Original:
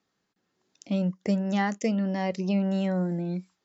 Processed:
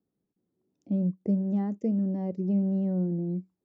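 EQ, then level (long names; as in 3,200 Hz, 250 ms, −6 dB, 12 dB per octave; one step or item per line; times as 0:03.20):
drawn EQ curve 350 Hz 0 dB, 1,600 Hz −24 dB, 3,000 Hz −28 dB
0.0 dB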